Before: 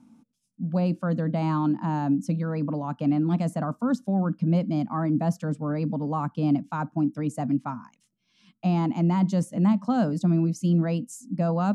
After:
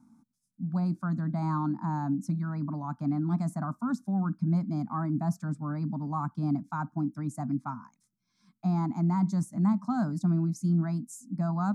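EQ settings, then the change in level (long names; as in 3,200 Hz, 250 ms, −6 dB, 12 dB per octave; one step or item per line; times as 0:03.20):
parametric band 1,800 Hz −5.5 dB 0.21 octaves
phaser with its sweep stopped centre 1,200 Hz, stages 4
−2.0 dB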